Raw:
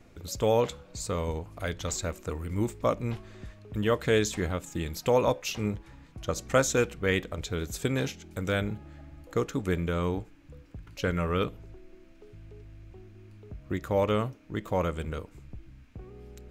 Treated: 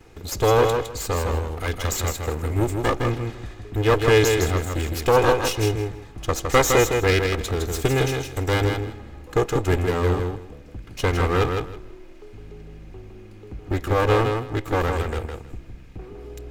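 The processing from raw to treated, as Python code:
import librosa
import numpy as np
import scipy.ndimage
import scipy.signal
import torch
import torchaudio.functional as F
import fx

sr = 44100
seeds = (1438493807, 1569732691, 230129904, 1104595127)

p1 = fx.lower_of_two(x, sr, delay_ms=2.4)
p2 = p1 + fx.echo_feedback(p1, sr, ms=160, feedback_pct=19, wet_db=-5.0, dry=0)
y = F.gain(torch.from_numpy(p2), 8.0).numpy()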